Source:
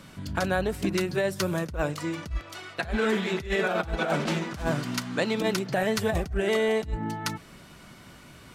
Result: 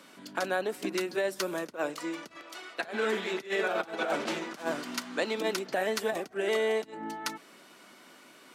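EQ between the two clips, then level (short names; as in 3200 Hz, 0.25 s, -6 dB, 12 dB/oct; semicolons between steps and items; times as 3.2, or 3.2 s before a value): HPF 260 Hz 24 dB/oct; -3.0 dB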